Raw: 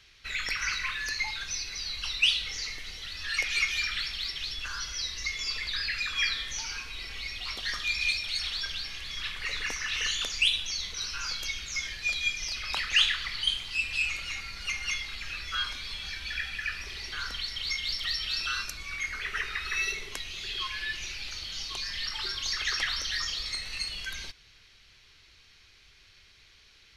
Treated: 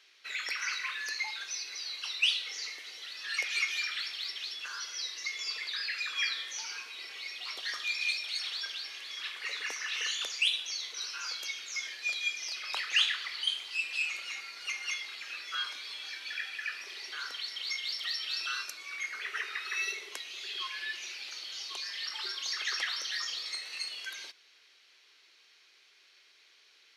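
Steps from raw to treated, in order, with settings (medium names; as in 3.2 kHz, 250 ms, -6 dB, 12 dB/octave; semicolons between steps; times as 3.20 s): high-pass 340 Hz 24 dB/octave; trim -3.5 dB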